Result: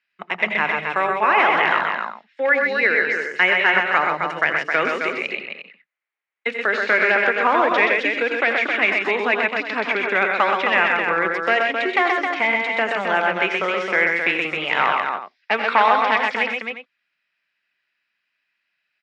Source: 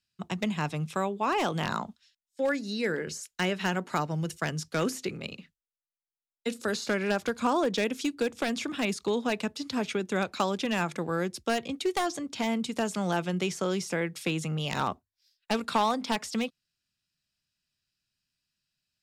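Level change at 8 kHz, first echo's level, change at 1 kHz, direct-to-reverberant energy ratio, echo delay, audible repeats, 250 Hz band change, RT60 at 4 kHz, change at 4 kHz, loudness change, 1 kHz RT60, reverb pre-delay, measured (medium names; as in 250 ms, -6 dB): no reading, -11.5 dB, +12.5 dB, no reverb, 84 ms, 4, -0.5 dB, no reverb, +7.0 dB, +11.5 dB, no reverb, no reverb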